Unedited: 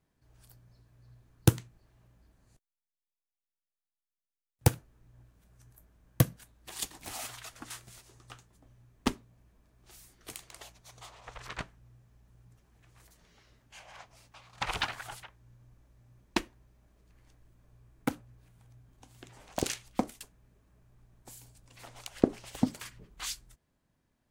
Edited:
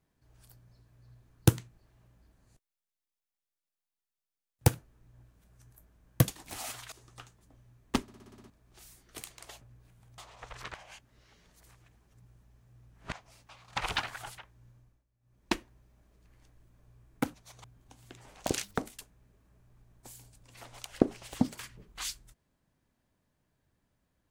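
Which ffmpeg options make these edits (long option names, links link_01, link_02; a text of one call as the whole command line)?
ffmpeg -i in.wav -filter_complex "[0:a]asplit=21[link_01][link_02][link_03][link_04][link_05][link_06][link_07][link_08][link_09][link_10][link_11][link_12][link_13][link_14][link_15][link_16][link_17][link_18][link_19][link_20][link_21];[link_01]atrim=end=6.282[link_22];[link_02]atrim=start=6.828:end=7.472[link_23];[link_03]atrim=start=8.038:end=9.202[link_24];[link_04]atrim=start=9.138:end=9.202[link_25];[link_05]atrim=start=9.138:end=9.202[link_26];[link_06]atrim=start=9.138:end=9.202[link_27];[link_07]atrim=start=9.138:end=9.202[link_28];[link_08]atrim=start=9.138:end=9.202[link_29];[link_09]atrim=start=9.138:end=9.202[link_30];[link_10]atrim=start=9.138:end=9.202[link_31];[link_11]atrim=start=9.618:end=10.732[link_32];[link_12]atrim=start=18.188:end=18.762[link_33];[link_13]atrim=start=11.028:end=11.592[link_34];[link_14]atrim=start=11.588:end=13.972,asetpts=PTS-STARTPTS,areverse[link_35];[link_15]atrim=start=13.968:end=15.9,asetpts=PTS-STARTPTS,afade=type=out:start_time=1.592:duration=0.34:silence=0.11885[link_36];[link_16]atrim=start=15.9:end=16.05,asetpts=PTS-STARTPTS,volume=-18.5dB[link_37];[link_17]atrim=start=16.05:end=18.192,asetpts=PTS-STARTPTS,afade=type=in:duration=0.34:silence=0.11885[link_38];[link_18]atrim=start=10.728:end=11.032[link_39];[link_19]atrim=start=18.758:end=19.754[link_40];[link_20]atrim=start=19.75:end=20,asetpts=PTS-STARTPTS,asetrate=73647,aresample=44100[link_41];[link_21]atrim=start=19.996[link_42];[link_22][link_23]acrossfade=duration=0.004:curve1=hsin:curve2=hsin[link_43];[link_43][link_24]acrossfade=duration=0.004:curve1=hsin:curve2=hsin[link_44];[link_44][link_25]acrossfade=duration=0.004:curve1=hsin:curve2=hsin[link_45];[link_45][link_26]acrossfade=duration=0.004:curve1=hsin:curve2=hsin[link_46];[link_46][link_27]acrossfade=duration=0.004:curve1=hsin:curve2=hsin[link_47];[link_47][link_28]acrossfade=duration=0.004:curve1=hsin:curve2=hsin[link_48];[link_48][link_29]acrossfade=duration=0.004:curve1=hsin:curve2=hsin[link_49];[link_49][link_30]acrossfade=duration=0.004:curve1=hsin:curve2=hsin[link_50];[link_50][link_31]acrossfade=duration=0.004:curve1=hsin:curve2=hsin[link_51];[link_51][link_32]acrossfade=duration=0.004:curve1=hsin:curve2=hsin[link_52];[link_52][link_33]acrossfade=duration=0.004:curve1=hsin:curve2=hsin[link_53];[link_53][link_34]acrossfade=duration=0.004:curve1=hsin:curve2=hsin[link_54];[link_54][link_35]acrossfade=duration=0.004:curve1=hsin:curve2=hsin[link_55];[link_36][link_37][link_38]concat=n=3:v=0:a=1[link_56];[link_55][link_56]acrossfade=duration=0.004:curve1=hsin:curve2=hsin[link_57];[link_57][link_39]acrossfade=duration=0.004:curve1=hsin:curve2=hsin[link_58];[link_58][link_40]acrossfade=duration=0.004:curve1=hsin:curve2=hsin[link_59];[link_59][link_41]acrossfade=duration=0.004:curve1=hsin:curve2=hsin[link_60];[link_60][link_42]acrossfade=duration=0.004:curve1=hsin:curve2=hsin" out.wav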